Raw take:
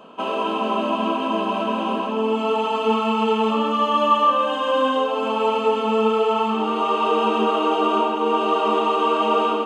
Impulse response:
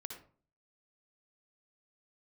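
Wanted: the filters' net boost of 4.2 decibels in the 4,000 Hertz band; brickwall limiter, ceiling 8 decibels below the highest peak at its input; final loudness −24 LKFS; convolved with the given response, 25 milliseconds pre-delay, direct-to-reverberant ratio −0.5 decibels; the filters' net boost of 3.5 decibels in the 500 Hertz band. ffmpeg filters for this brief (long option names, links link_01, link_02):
-filter_complex "[0:a]equalizer=frequency=500:width_type=o:gain=4,equalizer=frequency=4000:width_type=o:gain=6.5,alimiter=limit=-12.5dB:level=0:latency=1,asplit=2[link_01][link_02];[1:a]atrim=start_sample=2205,adelay=25[link_03];[link_02][link_03]afir=irnorm=-1:irlink=0,volume=3.5dB[link_04];[link_01][link_04]amix=inputs=2:normalize=0,volume=-6.5dB"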